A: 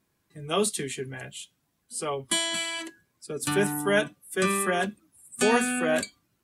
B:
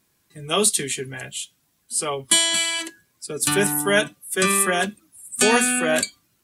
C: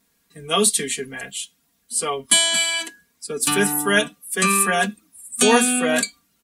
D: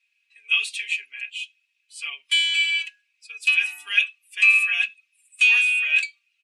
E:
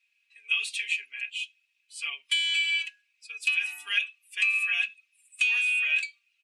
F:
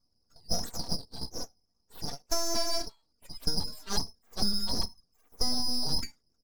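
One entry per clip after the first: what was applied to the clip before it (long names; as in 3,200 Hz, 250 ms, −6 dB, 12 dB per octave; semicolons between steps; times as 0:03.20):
high-shelf EQ 2,400 Hz +8.5 dB; level +3 dB
comb filter 4.3 ms, depth 75%; level −1 dB
in parallel at −7 dB: hard clipping −12 dBFS, distortion −15 dB; on the sum: four-pole ladder band-pass 2,600 Hz, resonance 90%; level +1.5 dB
downward compressor 6 to 1, threshold −21 dBFS, peak gain reduction 9.5 dB; level −1.5 dB
spectral peaks only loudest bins 32; full-wave rectification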